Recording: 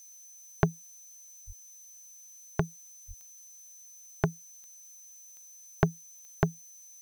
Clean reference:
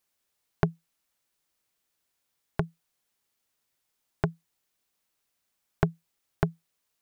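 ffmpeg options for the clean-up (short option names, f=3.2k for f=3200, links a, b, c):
-filter_complex "[0:a]adeclick=t=4,bandreject=f=6.1k:w=30,asplit=3[a][b][c];[a]afade=t=out:st=1.46:d=0.02[d];[b]highpass=f=140:w=0.5412,highpass=f=140:w=1.3066,afade=t=in:st=1.46:d=0.02,afade=t=out:st=1.58:d=0.02[e];[c]afade=t=in:st=1.58:d=0.02[f];[d][e][f]amix=inputs=3:normalize=0,asplit=3[g][h][i];[g]afade=t=out:st=3.07:d=0.02[j];[h]highpass=f=140:w=0.5412,highpass=f=140:w=1.3066,afade=t=in:st=3.07:d=0.02,afade=t=out:st=3.19:d=0.02[k];[i]afade=t=in:st=3.19:d=0.02[l];[j][k][l]amix=inputs=3:normalize=0,afftdn=nr=27:nf=-52"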